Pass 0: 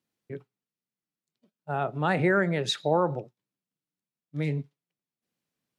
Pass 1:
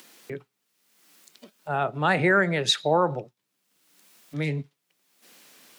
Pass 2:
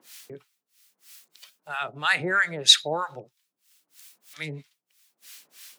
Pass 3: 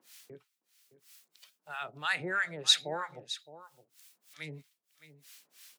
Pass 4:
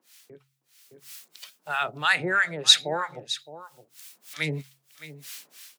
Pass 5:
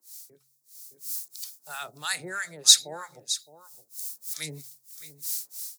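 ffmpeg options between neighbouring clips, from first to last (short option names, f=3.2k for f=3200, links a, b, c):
-filter_complex "[0:a]tiltshelf=f=820:g=-3.5,acrossover=split=210[a][b];[b]acompressor=mode=upward:threshold=-35dB:ratio=2.5[c];[a][c]amix=inputs=2:normalize=0,volume=3.5dB"
-filter_complex "[0:a]tiltshelf=f=1.2k:g=-9,acrossover=split=890[a][b];[a]aeval=exprs='val(0)*(1-1/2+1/2*cos(2*PI*3.1*n/s))':c=same[c];[b]aeval=exprs='val(0)*(1-1/2-1/2*cos(2*PI*3.1*n/s))':c=same[d];[c][d]amix=inputs=2:normalize=0,volume=1.5dB"
-af "aecho=1:1:615:0.178,volume=-8.5dB"
-af "bandreject=f=45.02:t=h:w=4,bandreject=f=90.04:t=h:w=4,bandreject=f=135.06:t=h:w=4,dynaudnorm=f=540:g=3:m=16dB,volume=-1dB"
-af "aexciter=amount=8.4:drive=6.1:freq=4.3k,volume=-10.5dB"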